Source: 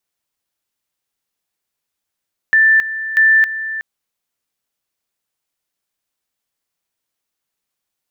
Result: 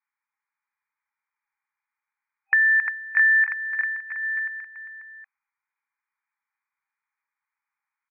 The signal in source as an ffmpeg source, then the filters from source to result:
-f lavfi -i "aevalsrc='pow(10,(-7.5-13*gte(mod(t,0.64),0.27))/20)*sin(2*PI*1770*t)':d=1.28:s=44100"
-filter_complex "[0:a]afftfilt=real='re*between(b*sr/4096,790,2500)':imag='im*between(b*sr/4096,790,2500)':win_size=4096:overlap=0.75,acompressor=threshold=0.141:ratio=6,asplit=2[s0][s1];[s1]aecho=0:1:350|665|948.5|1204|1433:0.631|0.398|0.251|0.158|0.1[s2];[s0][s2]amix=inputs=2:normalize=0"

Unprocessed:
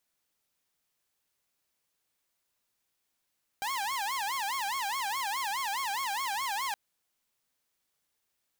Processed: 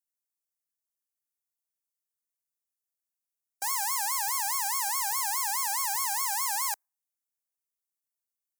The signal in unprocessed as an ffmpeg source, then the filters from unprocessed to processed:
-f lavfi -i "aevalsrc='0.0398*(2*mod((942*t-158/(2*PI*4.8)*sin(2*PI*4.8*t)),1)-1)':d=3.12:s=44100"
-filter_complex "[0:a]afftdn=nr=22:nf=-53,acrossover=split=330 2400:gain=0.2 1 0.224[s0][s1][s2];[s0][s1][s2]amix=inputs=3:normalize=0,aexciter=amount=15:drive=4.8:freq=4900"

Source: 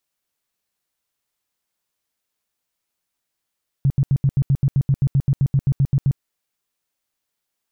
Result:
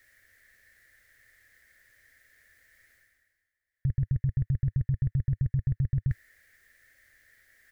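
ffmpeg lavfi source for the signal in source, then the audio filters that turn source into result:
-f lavfi -i "aevalsrc='0.237*sin(2*PI*137*mod(t,0.13))*lt(mod(t,0.13),7/137)':d=2.34:s=44100"
-af "areverse,acompressor=mode=upward:threshold=0.02:ratio=2.5,areverse,firequalizer=gain_entry='entry(100,0);entry(160,-16);entry(250,-12);entry(360,-13);entry(550,-8);entry(970,-26);entry(1800,12);entry(2600,-14)':delay=0.05:min_phase=1"

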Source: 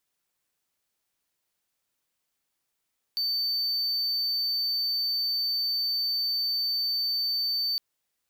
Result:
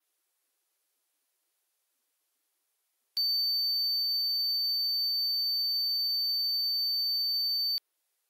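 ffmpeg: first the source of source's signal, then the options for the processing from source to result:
-f lavfi -i "aevalsrc='0.0708*(1-4*abs(mod(4560*t+0.25,1)-0.5))':d=4.61:s=44100"
-af "adynamicequalizer=threshold=0.00447:dfrequency=7500:dqfactor=1.2:tfrequency=7500:tqfactor=1.2:attack=5:release=100:ratio=0.375:range=2.5:mode=cutabove:tftype=bell,aexciter=amount=1.3:drive=6.2:freq=10000" -ar 48000 -c:a libvorbis -b:a 48k

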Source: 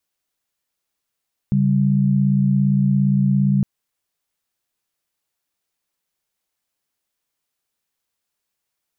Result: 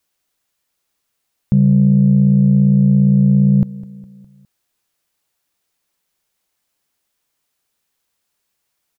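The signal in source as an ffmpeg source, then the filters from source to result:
-f lavfi -i "aevalsrc='0.15*(sin(2*PI*138.59*t)+sin(2*PI*196*t))':d=2.11:s=44100"
-af "acontrast=71,aecho=1:1:205|410|615|820:0.126|0.0629|0.0315|0.0157"

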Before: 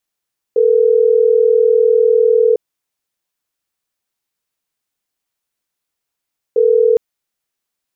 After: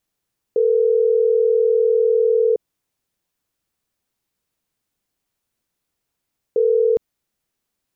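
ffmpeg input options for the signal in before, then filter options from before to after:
-f lavfi -i "aevalsrc='0.282*(sin(2*PI*440*t)+sin(2*PI*480*t))*clip(min(mod(t,6),2-mod(t,6))/0.005,0,1)':d=6.41:s=44100"
-af "lowshelf=f=450:g=10,alimiter=limit=0.282:level=0:latency=1:release=53"

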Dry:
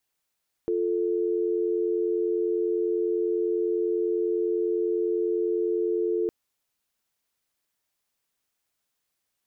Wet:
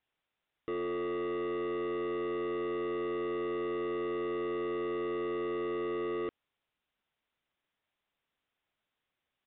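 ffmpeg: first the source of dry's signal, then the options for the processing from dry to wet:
-f lavfi -i "aevalsrc='0.0531*(sin(2*PI*350*t)+sin(2*PI*440*t))':d=5.61:s=44100"
-af "asoftclip=type=hard:threshold=0.0224,aresample=8000,aresample=44100"

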